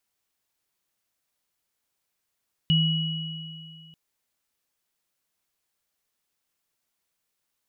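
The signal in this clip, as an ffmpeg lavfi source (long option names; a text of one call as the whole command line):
ffmpeg -f lavfi -i "aevalsrc='0.126*pow(10,-3*t/2.3)*sin(2*PI*161*t)+0.0891*pow(10,-3*t/2.45)*sin(2*PI*2920*t)':duration=1.24:sample_rate=44100" out.wav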